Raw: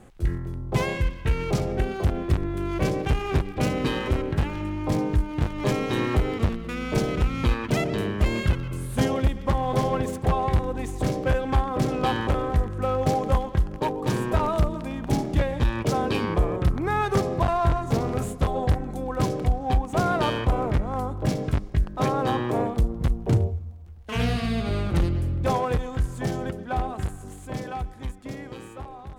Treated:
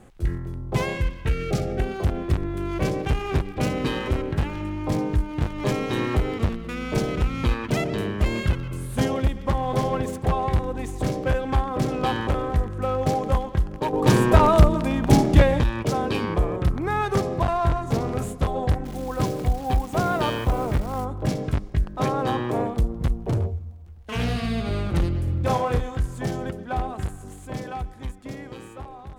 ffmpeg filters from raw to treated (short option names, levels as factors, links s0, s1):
-filter_complex "[0:a]asettb=1/sr,asplit=3[s0][s1][s2];[s0]atrim=end=1.294[s3];[s1]atrim=start=1.29:end=1.8,asetpts=PTS-STARTPTS,afade=t=in:d=0.004:c=qsin,afade=t=out:st=0.506:d=0.004:c=qsin,asuperstop=centerf=960:order=20:qfactor=3.9[s4];[s2]atrim=start=1.796[s5];[s3][s4]acrossfade=d=0.004:c1=hsin:c2=qsin[s6];[s6][s5]acrossfade=d=0.004:c1=qsin:c2=hsin,asettb=1/sr,asplit=3[s7][s8][s9];[s7]atrim=end=18.854[s10];[s8]atrim=start=18.85:end=21.05,asetpts=PTS-STARTPTS,afade=t=in:d=0.004:c=qsin,afade=t=out:st=2.196:d=0.004:c=qsin,acrusher=bits=8:dc=4:mix=0:aa=0.000001[s11];[s9]atrim=start=21.046[s12];[s10][s11]acrossfade=d=0.004:c1=hsin:c2=qsin[s13];[s13][s12]acrossfade=d=0.004:c1=qsin:c2=hsin,asettb=1/sr,asplit=3[s14][s15][s16];[s14]atrim=end=23.134[s17];[s15]atrim=start=23.13:end=24.39,asetpts=PTS-STARTPTS,afade=t=in:d=0.004:c=qsin,afade=t=out:st=1.256:d=0.004:c=qsin,asoftclip=type=hard:threshold=0.106[s18];[s16]atrim=start=24.386[s19];[s17][s18]acrossfade=d=0.004:c1=hsin:c2=qsin[s20];[s20][s19]acrossfade=d=0.004:c1=qsin:c2=hsin,asettb=1/sr,asplit=3[s21][s22][s23];[s21]atrim=end=25.244[s24];[s22]atrim=start=25.24:end=25.97,asetpts=PTS-STARTPTS,afade=t=in:d=0.004:c=qsin,afade=t=out:st=0.726:d=0.004:c=qsin,asplit=2[s25][s26];[s26]adelay=33,volume=0.596[s27];[s25][s27]amix=inputs=2:normalize=0,atrim=end_sample=32193[s28];[s23]atrim=start=25.966[s29];[s24][s28]acrossfade=d=0.004:c1=hsin:c2=qsin[s30];[s30][s29]acrossfade=d=0.004:c1=qsin:c2=hsin,asplit=3[s31][s32][s33];[s31]atrim=end=13.932[s34];[s32]atrim=start=13.928:end=15.612,asetpts=PTS-STARTPTS,volume=2.51[s35];[s33]atrim=start=15.608[s36];[s34][s35]acrossfade=d=0.004:c1=hsin:c2=hsin[s37];[s37][s36]acrossfade=d=0.004:c1=hsin:c2=hsin"